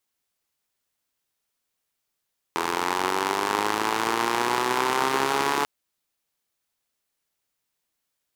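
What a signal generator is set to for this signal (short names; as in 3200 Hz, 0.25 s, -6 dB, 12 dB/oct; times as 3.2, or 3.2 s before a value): four-cylinder engine model, changing speed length 3.09 s, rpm 2500, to 4300, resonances 390/910 Hz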